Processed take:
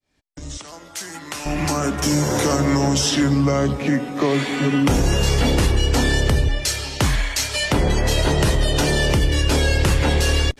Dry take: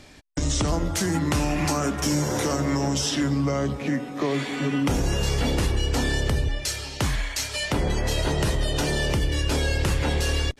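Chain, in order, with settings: opening faded in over 2.53 s; 0.57–1.46 HPF 1300 Hz 6 dB/oct; gain +6 dB

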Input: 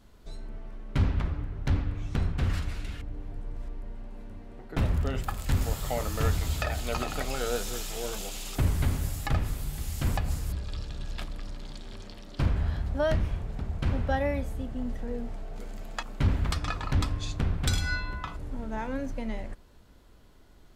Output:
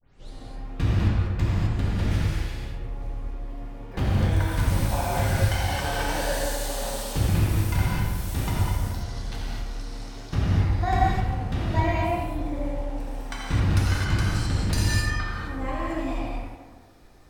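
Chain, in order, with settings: tape start at the beginning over 0.38 s; on a send: tape echo 0.102 s, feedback 73%, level -4.5 dB, low-pass 2500 Hz; on the sum: non-linear reverb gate 0.34 s flat, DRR -5.5 dB; wide varispeed 1.2×; gain -3 dB

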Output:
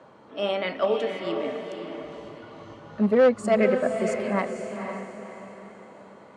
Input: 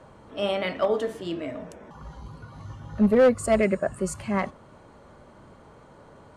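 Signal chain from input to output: BPF 200–5500 Hz; diffused feedback echo 0.502 s, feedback 42%, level -6 dB

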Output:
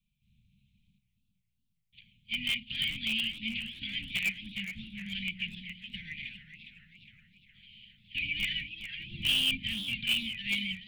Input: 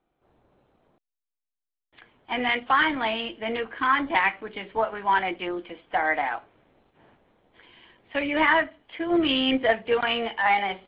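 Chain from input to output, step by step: Chebyshev band-stop 210–2400 Hz, order 5; in parallel at -10 dB: wrapped overs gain 24.5 dB; on the sum: warbling echo 0.416 s, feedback 51%, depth 176 cents, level -10.5 dB

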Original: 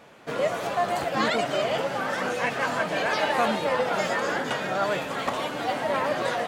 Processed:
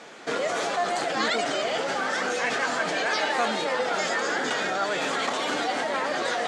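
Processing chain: high shelf 5000 Hz +7.5 dB; in parallel at -3 dB: negative-ratio compressor -32 dBFS, ratio -0.5; on the sum: speaker cabinet 280–7900 Hz, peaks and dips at 580 Hz -5 dB, 1000 Hz -5 dB, 2700 Hz -4 dB

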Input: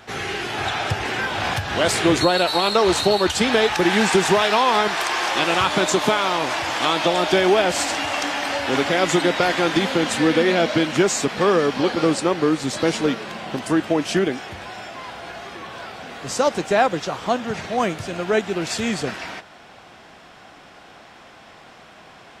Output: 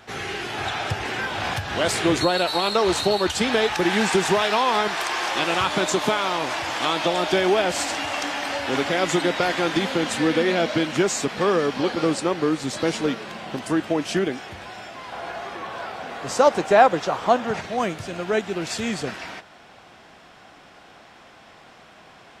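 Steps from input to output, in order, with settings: 15.12–17.61 bell 810 Hz +7 dB 2.4 oct; gain -3 dB

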